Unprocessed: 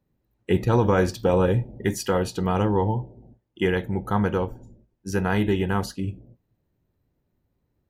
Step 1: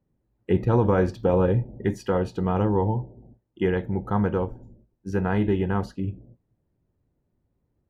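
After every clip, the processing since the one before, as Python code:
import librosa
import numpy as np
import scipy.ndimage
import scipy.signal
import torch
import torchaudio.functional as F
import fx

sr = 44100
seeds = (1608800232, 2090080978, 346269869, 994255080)

y = fx.lowpass(x, sr, hz=1200.0, slope=6)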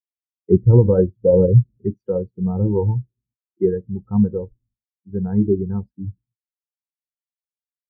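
y = fx.spectral_expand(x, sr, expansion=2.5)
y = y * librosa.db_to_amplitude(7.0)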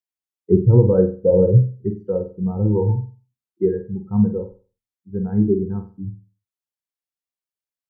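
y = fx.room_flutter(x, sr, wall_m=8.1, rt60_s=0.36)
y = y * librosa.db_to_amplitude(-1.0)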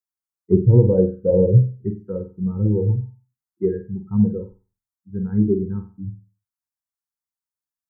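y = fx.env_phaser(x, sr, low_hz=470.0, high_hz=1400.0, full_db=-10.5)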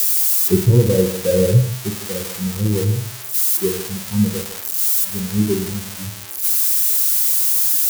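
y = x + 0.5 * 10.0 ** (-11.0 / 20.0) * np.diff(np.sign(x), prepend=np.sign(x[:1]))
y = y + 10.0 ** (-12.0 / 20.0) * np.pad(y, (int(154 * sr / 1000.0), 0))[:len(y)]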